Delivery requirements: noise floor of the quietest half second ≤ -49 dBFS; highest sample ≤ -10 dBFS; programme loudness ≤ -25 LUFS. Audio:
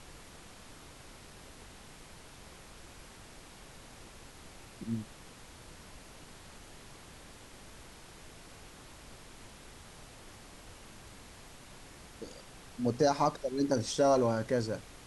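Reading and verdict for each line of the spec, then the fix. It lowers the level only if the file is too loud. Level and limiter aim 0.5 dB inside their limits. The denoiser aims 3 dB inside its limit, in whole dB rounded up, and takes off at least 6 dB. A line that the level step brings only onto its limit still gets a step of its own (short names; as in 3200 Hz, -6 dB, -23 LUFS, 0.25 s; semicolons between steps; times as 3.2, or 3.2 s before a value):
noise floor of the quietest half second -52 dBFS: OK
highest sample -15.0 dBFS: OK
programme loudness -31.5 LUFS: OK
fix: none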